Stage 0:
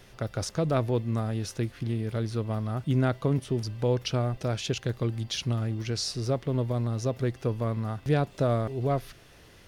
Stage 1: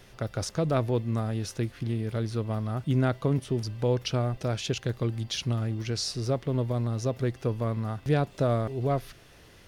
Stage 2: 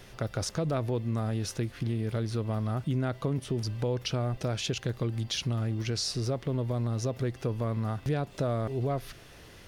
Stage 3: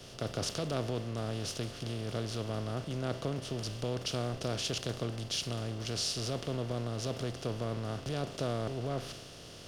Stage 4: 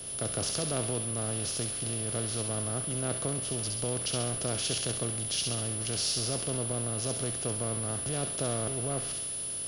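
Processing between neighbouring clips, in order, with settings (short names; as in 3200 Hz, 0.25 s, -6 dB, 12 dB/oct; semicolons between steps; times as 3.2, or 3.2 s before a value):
nothing audible
in parallel at -0.5 dB: limiter -24.5 dBFS, peak gain reduction 10.5 dB; on the sum: compressor 2:1, threshold -26 dBFS, peak gain reduction 5.5 dB; gain -3 dB
per-bin compression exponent 0.4; three-band expander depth 100%; gain -9 dB
whine 10000 Hz -41 dBFS; thin delay 67 ms, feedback 51%, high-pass 1900 Hz, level -3 dB; gain +1 dB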